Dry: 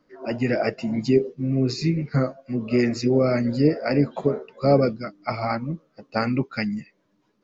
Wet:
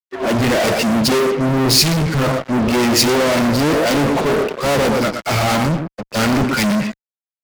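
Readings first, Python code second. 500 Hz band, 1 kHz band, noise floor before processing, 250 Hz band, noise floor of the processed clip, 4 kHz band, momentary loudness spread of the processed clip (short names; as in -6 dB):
+6.0 dB, +11.0 dB, -68 dBFS, +6.0 dB, under -85 dBFS, +18.5 dB, 6 LU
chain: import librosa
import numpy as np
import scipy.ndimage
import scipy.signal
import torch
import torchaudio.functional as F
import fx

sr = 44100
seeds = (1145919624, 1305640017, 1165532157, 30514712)

y = fx.echo_thinned(x, sr, ms=121, feedback_pct=17, hz=270.0, wet_db=-11.0)
y = fx.fuzz(y, sr, gain_db=44.0, gate_db=-46.0)
y = fx.band_widen(y, sr, depth_pct=100)
y = y * librosa.db_to_amplitude(-1.0)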